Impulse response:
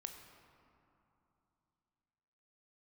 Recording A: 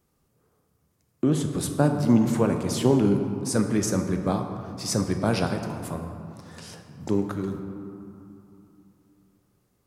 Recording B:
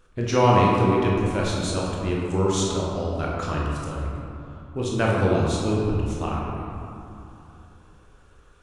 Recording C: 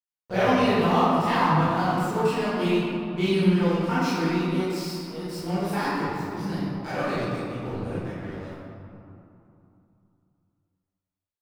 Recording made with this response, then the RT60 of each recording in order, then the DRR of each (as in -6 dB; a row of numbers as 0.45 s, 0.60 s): A; 2.9 s, 2.9 s, 2.9 s; 5.0 dB, -4.0 dB, -13.0 dB